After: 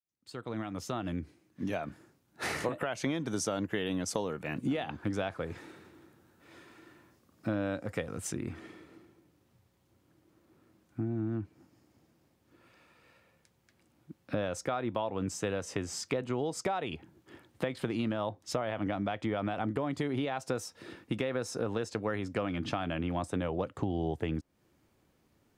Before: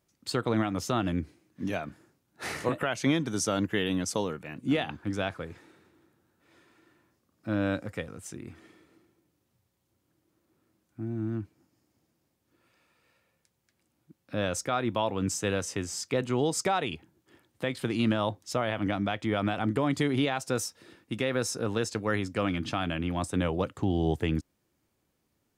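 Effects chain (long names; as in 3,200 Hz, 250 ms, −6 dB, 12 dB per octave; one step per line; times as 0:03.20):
fade in at the beginning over 3.73 s
dynamic equaliser 640 Hz, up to +4 dB, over −42 dBFS, Q 0.99
downward compressor 6 to 1, threshold −37 dBFS, peak gain reduction 16 dB
high-shelf EQ 4,500 Hz −2 dB, from 0:08.32 −7.5 dB
level +7 dB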